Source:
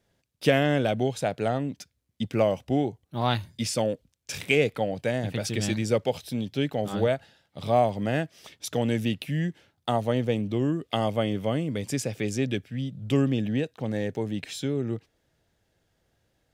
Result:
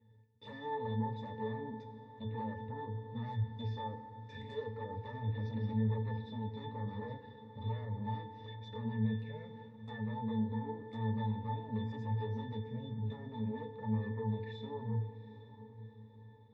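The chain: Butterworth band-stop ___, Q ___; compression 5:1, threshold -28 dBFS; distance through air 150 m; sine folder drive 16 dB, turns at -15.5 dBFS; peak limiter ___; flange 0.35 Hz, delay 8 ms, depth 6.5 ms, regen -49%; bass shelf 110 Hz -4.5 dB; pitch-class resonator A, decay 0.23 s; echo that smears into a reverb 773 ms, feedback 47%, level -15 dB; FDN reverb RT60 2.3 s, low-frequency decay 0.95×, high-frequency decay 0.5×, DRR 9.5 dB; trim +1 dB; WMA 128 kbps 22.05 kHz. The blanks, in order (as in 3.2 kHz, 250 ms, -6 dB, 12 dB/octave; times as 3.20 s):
650 Hz, 6, -21.5 dBFS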